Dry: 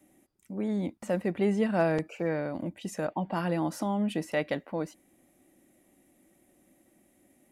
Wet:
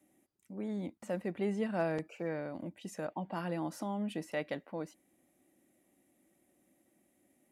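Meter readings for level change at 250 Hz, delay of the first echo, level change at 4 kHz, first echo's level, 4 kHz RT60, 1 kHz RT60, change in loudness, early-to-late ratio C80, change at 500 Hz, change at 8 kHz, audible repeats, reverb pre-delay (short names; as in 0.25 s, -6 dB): -7.5 dB, none, -7.0 dB, none, none, none, -7.5 dB, none, -7.0 dB, -7.0 dB, none, none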